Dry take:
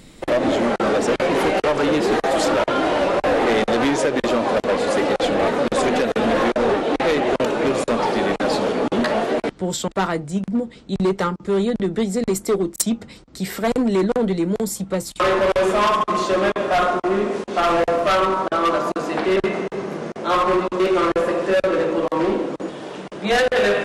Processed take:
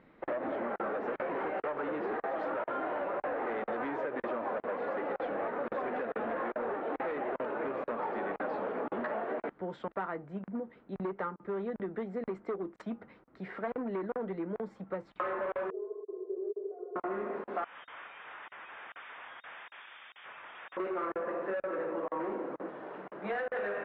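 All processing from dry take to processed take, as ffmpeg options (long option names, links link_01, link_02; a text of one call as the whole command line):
ffmpeg -i in.wav -filter_complex "[0:a]asettb=1/sr,asplit=3[link_01][link_02][link_03];[link_01]atrim=end=15.704[link_04];[link_02]atrim=start=15.7:end=16.96,asetpts=PTS-STARTPTS,afade=type=in:duration=0.004:curve=qsin,afade=type=out:start_time=1.256:duration=0.004:curve=qsin,asuperpass=centerf=420:order=4:qfactor=5,aecho=1:1:2.7:0.64,atrim=end_sample=55566[link_05];[link_03]atrim=start=16.956[link_06];[link_04][link_05]acrossfade=duration=0.004:curve1=hsin:curve2=qsin[link_07];[link_07][link_06]acrossfade=duration=0.004:curve1=qsin:curve2=hsin,asettb=1/sr,asplit=3[link_08][link_09][link_10];[link_08]atrim=end=17.644[link_11];[link_09]atrim=start=17.64:end=20.77,asetpts=PTS-STARTPTS,afade=type=in:duration=0.004:curve=qsin,afade=type=out:start_time=3.126:duration=0.004:curve=qsin,aeval=exprs='0.0398*(abs(mod(val(0)/0.0398+3,4)-2)-1)':channel_layout=same,lowpass=frequency=3100:width_type=q:width=0.5098,lowpass=frequency=3100:width_type=q:width=0.6013,lowpass=frequency=3100:width_type=q:width=0.9,lowpass=frequency=3100:width_type=q:width=2.563,afreqshift=-3700[link_12];[link_10]atrim=start=20.766[link_13];[link_11][link_12]acrossfade=duration=0.004:curve1=hsin:curve2=qsin[link_14];[link_14][link_13]acrossfade=duration=0.004:curve1=qsin:curve2=hsin,lowpass=frequency=1700:width=0.5412,lowpass=frequency=1700:width=1.3066,aemphasis=mode=production:type=riaa,acompressor=threshold=-23dB:ratio=6,volume=-8.5dB" out.wav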